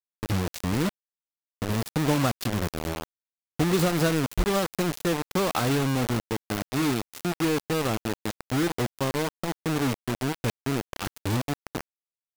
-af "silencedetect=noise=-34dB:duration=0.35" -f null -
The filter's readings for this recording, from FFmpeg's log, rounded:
silence_start: 0.89
silence_end: 1.62 | silence_duration: 0.73
silence_start: 3.04
silence_end: 3.59 | silence_duration: 0.56
silence_start: 11.81
silence_end: 12.37 | silence_duration: 0.56